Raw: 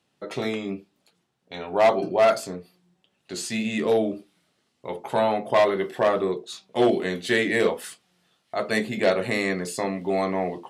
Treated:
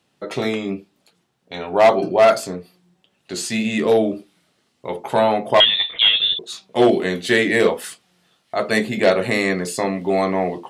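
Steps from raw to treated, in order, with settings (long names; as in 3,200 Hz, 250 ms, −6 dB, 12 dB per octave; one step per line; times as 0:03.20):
0:05.60–0:06.39: voice inversion scrambler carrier 3,900 Hz
level +5.5 dB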